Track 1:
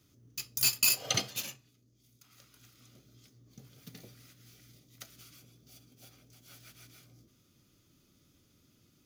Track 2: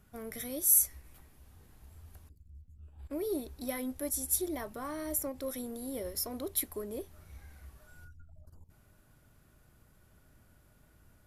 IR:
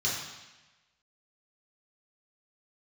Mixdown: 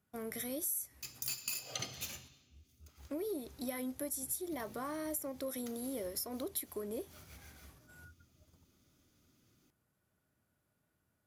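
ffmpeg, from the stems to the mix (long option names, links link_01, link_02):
-filter_complex "[0:a]adelay=650,volume=-4dB,asplit=2[link_01][link_02];[link_02]volume=-19.5dB[link_03];[1:a]highpass=110,agate=range=-15dB:threshold=-59dB:ratio=16:detection=peak,volume=1dB[link_04];[2:a]atrim=start_sample=2205[link_05];[link_03][link_05]afir=irnorm=-1:irlink=0[link_06];[link_01][link_04][link_06]amix=inputs=3:normalize=0,acompressor=threshold=-36dB:ratio=6"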